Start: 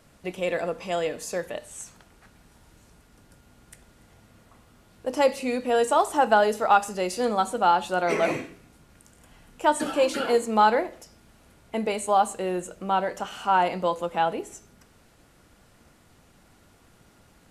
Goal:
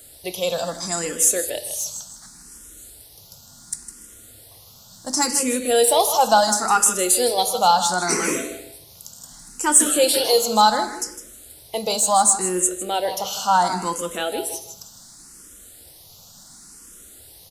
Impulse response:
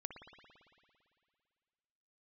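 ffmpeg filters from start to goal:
-filter_complex "[0:a]aexciter=amount=6.4:drive=6.1:freq=3600,aecho=1:1:157|314|471:0.266|0.0665|0.0166,asplit=2[s0][s1];[1:a]atrim=start_sample=2205,afade=t=out:st=0.4:d=0.01,atrim=end_sample=18081,asetrate=52920,aresample=44100[s2];[s1][s2]afir=irnorm=-1:irlink=0,volume=0.794[s3];[s0][s3]amix=inputs=2:normalize=0,acontrast=22,asplit=2[s4][s5];[s5]afreqshift=0.7[s6];[s4][s6]amix=inputs=2:normalize=1,volume=0.75"

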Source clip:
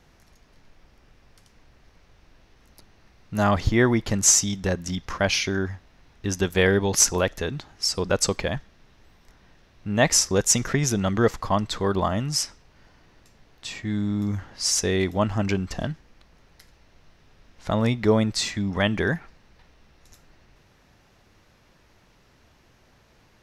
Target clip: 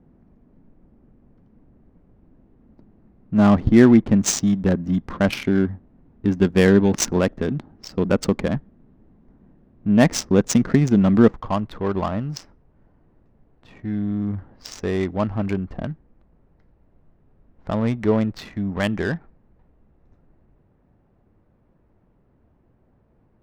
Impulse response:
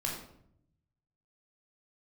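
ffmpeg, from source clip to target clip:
-af "asetnsamples=n=441:p=0,asendcmd='11.32 equalizer g 3',equalizer=f=230:w=0.99:g=13,adynamicsmooth=sensitivity=1.5:basefreq=810,volume=0.891"

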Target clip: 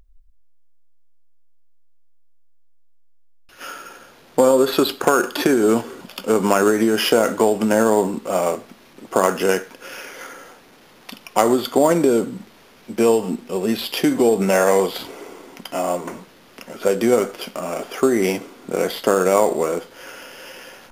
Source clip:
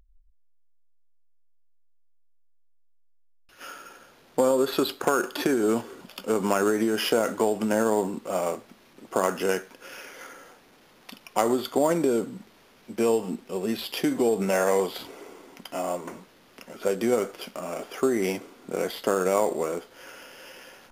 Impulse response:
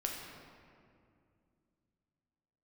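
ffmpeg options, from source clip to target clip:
-filter_complex "[0:a]asplit=2[s0][s1];[1:a]atrim=start_sample=2205,afade=t=out:st=0.24:d=0.01,atrim=end_sample=11025,asetrate=70560,aresample=44100[s2];[s1][s2]afir=irnorm=-1:irlink=0,volume=0.266[s3];[s0][s3]amix=inputs=2:normalize=0,volume=2"

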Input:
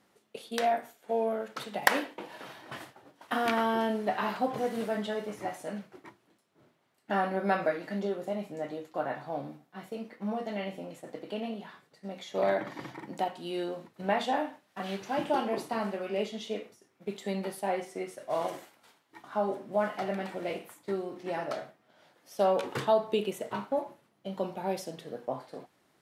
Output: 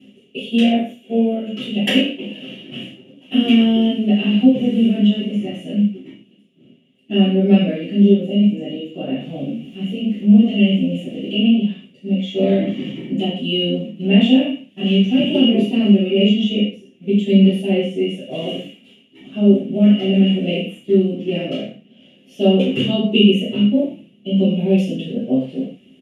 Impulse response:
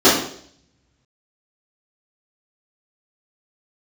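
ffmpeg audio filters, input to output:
-filter_complex "[0:a]asettb=1/sr,asplit=3[s0][s1][s2];[s0]atrim=end=9.204[s3];[s1]atrim=start=9.2:end=11.35,asetpts=PTS-STARTPTS,afade=t=in:d=0.004:c=qsin,afade=t=out:st=2.146:d=0.004:c=qsin,aeval=exprs='val(0)+0.5*0.00316*sgn(val(0))':c=same[s4];[s2]atrim=start=11.346[s5];[s3][s4]acrossfade=d=0.004:c1=hsin:c2=qsin[s6];[s6][s5]acrossfade=d=0.004:c1=qsin:c2=hsin,firequalizer=gain_entry='entry(140,0);entry(210,8);entry(310,-11);entry(530,-9);entry(900,-30);entry(1500,-25);entry(2800,11);entry(4300,-20);entry(9100,-5);entry(15000,-16)':delay=0.05:min_phase=1[s7];[1:a]atrim=start_sample=2205,atrim=end_sample=6174[s8];[s7][s8]afir=irnorm=-1:irlink=0,dynaudnorm=f=140:g=31:m=3.76,volume=0.891"

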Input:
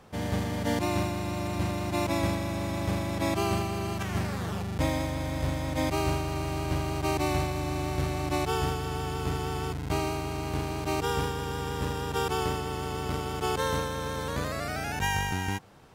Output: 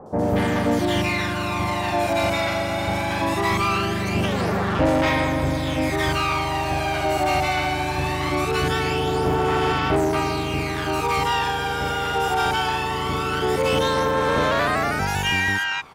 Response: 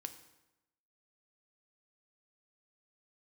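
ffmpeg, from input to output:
-filter_complex "[0:a]aphaser=in_gain=1:out_gain=1:delay=1.4:decay=0.54:speed=0.21:type=sinusoidal,acrossover=split=880|5900[s0][s1][s2];[s2]adelay=60[s3];[s1]adelay=230[s4];[s0][s4][s3]amix=inputs=3:normalize=0,asplit=2[s5][s6];[s6]highpass=f=720:p=1,volume=11.2,asoftclip=type=tanh:threshold=0.335[s7];[s5][s7]amix=inputs=2:normalize=0,lowpass=f=2700:p=1,volume=0.501"

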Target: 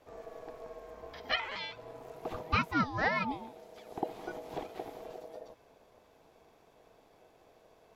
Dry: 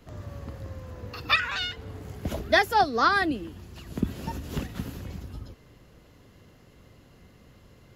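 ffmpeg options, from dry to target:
-filter_complex "[0:a]acrossover=split=4200[s0][s1];[s1]acompressor=threshold=0.00178:ratio=4:attack=1:release=60[s2];[s0][s2]amix=inputs=2:normalize=0,aeval=exprs='val(0)*sin(2*PI*560*n/s)':c=same,volume=0.531"

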